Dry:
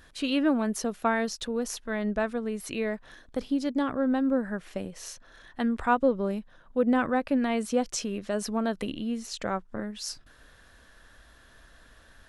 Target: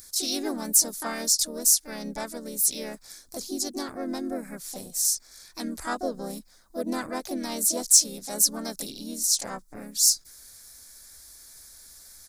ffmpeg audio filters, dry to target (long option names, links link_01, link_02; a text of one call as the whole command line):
ffmpeg -i in.wav -filter_complex "[0:a]asplit=4[link_01][link_02][link_03][link_04];[link_02]asetrate=37084,aresample=44100,atempo=1.18921,volume=-10dB[link_05];[link_03]asetrate=52444,aresample=44100,atempo=0.840896,volume=-11dB[link_06];[link_04]asetrate=58866,aresample=44100,atempo=0.749154,volume=-4dB[link_07];[link_01][link_05][link_06][link_07]amix=inputs=4:normalize=0,aexciter=amount=9.3:drive=9.1:freq=4400,volume=-8.5dB" out.wav